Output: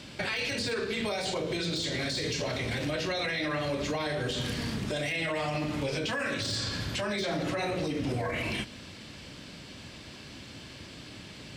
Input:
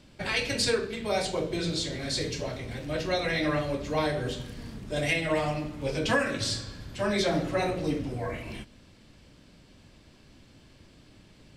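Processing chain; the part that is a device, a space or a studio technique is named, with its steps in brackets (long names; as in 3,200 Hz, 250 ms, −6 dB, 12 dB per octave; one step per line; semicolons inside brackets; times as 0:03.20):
broadcast voice chain (high-pass filter 73 Hz; de-essing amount 85%; downward compressor 4 to 1, threshold −34 dBFS, peak gain reduction 12 dB; parametric band 3,300 Hz +6 dB 2.9 octaves; brickwall limiter −31.5 dBFS, peak gain reduction 11.5 dB)
level +8.5 dB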